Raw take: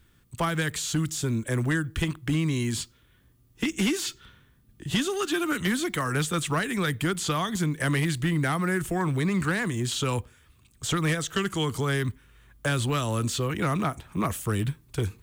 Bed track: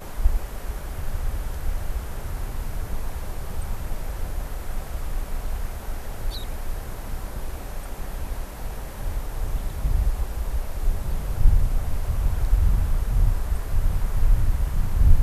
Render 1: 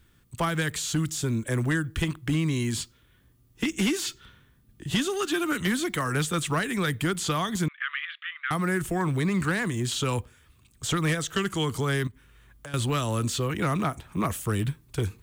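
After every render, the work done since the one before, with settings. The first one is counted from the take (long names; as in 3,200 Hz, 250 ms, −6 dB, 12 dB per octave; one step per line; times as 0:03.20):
0:07.68–0:08.51: Chebyshev band-pass filter 1,200–3,400 Hz, order 4
0:12.07–0:12.74: downward compressor 5 to 1, threshold −40 dBFS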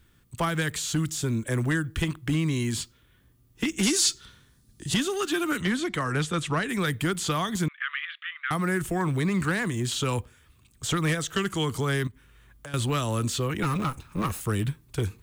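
0:03.83–0:04.94: flat-topped bell 6,500 Hz +10.5 dB
0:05.61–0:06.69: high-frequency loss of the air 52 metres
0:13.63–0:14.41: lower of the sound and its delayed copy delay 0.77 ms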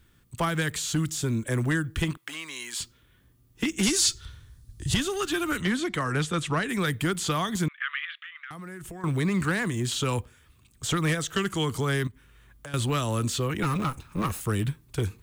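0:02.17–0:02.80: high-pass filter 870 Hz
0:03.88–0:05.60: low shelf with overshoot 130 Hz +12 dB, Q 1.5
0:08.15–0:09.04: downward compressor 10 to 1, threshold −37 dBFS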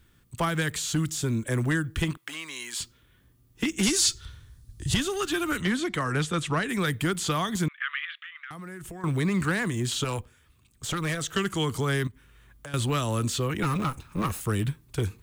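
0:10.04–0:11.21: tube saturation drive 22 dB, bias 0.6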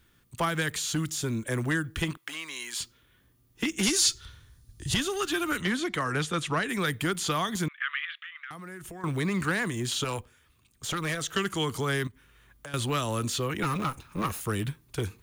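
low-shelf EQ 220 Hz −6 dB
notch filter 7,900 Hz, Q 13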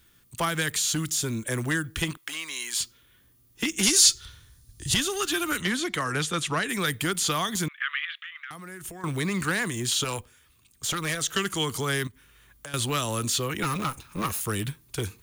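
high-shelf EQ 3,300 Hz +8 dB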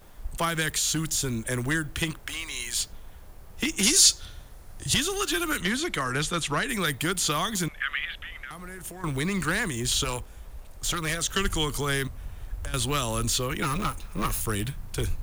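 mix in bed track −16 dB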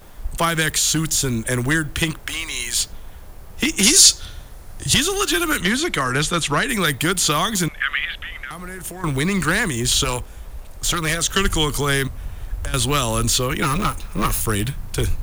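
level +7.5 dB
brickwall limiter −1 dBFS, peak gain reduction 1 dB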